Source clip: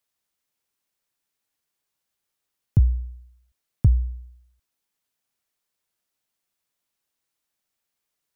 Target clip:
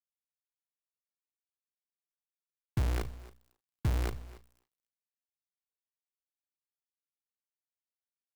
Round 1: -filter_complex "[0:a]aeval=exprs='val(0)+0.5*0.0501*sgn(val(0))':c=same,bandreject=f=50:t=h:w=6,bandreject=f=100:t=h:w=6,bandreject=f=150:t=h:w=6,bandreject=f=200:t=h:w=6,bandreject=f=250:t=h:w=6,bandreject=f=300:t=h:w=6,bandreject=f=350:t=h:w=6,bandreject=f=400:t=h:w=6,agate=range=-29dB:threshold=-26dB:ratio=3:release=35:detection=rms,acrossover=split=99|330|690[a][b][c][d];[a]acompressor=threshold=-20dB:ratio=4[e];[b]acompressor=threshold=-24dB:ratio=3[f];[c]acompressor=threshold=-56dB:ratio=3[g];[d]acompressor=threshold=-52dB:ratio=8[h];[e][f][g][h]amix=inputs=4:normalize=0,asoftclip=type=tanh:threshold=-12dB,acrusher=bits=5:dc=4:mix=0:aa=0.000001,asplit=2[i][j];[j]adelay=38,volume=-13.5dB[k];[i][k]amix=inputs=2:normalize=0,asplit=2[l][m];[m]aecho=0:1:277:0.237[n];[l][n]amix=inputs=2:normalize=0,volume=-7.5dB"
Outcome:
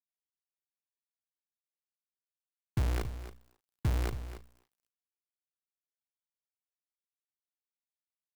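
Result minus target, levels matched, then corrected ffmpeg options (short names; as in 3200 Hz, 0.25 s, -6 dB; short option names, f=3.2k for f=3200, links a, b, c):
echo-to-direct +7 dB
-filter_complex "[0:a]aeval=exprs='val(0)+0.5*0.0501*sgn(val(0))':c=same,bandreject=f=50:t=h:w=6,bandreject=f=100:t=h:w=6,bandreject=f=150:t=h:w=6,bandreject=f=200:t=h:w=6,bandreject=f=250:t=h:w=6,bandreject=f=300:t=h:w=6,bandreject=f=350:t=h:w=6,bandreject=f=400:t=h:w=6,agate=range=-29dB:threshold=-26dB:ratio=3:release=35:detection=rms,acrossover=split=99|330|690[a][b][c][d];[a]acompressor=threshold=-20dB:ratio=4[e];[b]acompressor=threshold=-24dB:ratio=3[f];[c]acompressor=threshold=-56dB:ratio=3[g];[d]acompressor=threshold=-52dB:ratio=8[h];[e][f][g][h]amix=inputs=4:normalize=0,asoftclip=type=tanh:threshold=-12dB,acrusher=bits=5:dc=4:mix=0:aa=0.000001,asplit=2[i][j];[j]adelay=38,volume=-13.5dB[k];[i][k]amix=inputs=2:normalize=0,asplit=2[l][m];[m]aecho=0:1:277:0.106[n];[l][n]amix=inputs=2:normalize=0,volume=-7.5dB"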